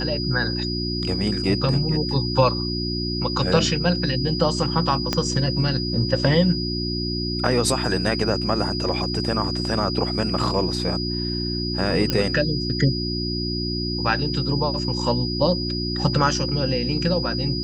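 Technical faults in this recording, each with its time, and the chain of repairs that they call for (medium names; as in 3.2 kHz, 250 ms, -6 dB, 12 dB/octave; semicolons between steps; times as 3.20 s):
hum 60 Hz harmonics 6 -27 dBFS
whine 4.9 kHz -28 dBFS
5.13 s: pop -7 dBFS
12.10 s: pop -7 dBFS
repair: de-click; band-stop 4.9 kHz, Q 30; de-hum 60 Hz, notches 6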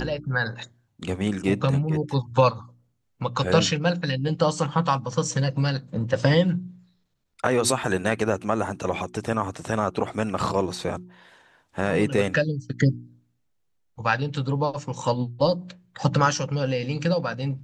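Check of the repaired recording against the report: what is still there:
5.13 s: pop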